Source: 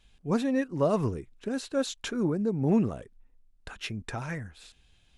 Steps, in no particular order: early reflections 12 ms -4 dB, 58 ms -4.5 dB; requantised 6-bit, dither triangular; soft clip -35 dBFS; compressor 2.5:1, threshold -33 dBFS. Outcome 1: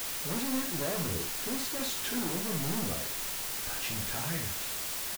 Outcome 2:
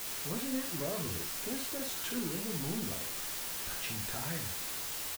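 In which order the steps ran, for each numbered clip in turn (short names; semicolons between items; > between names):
soft clip > compressor > early reflections > requantised; compressor > requantised > soft clip > early reflections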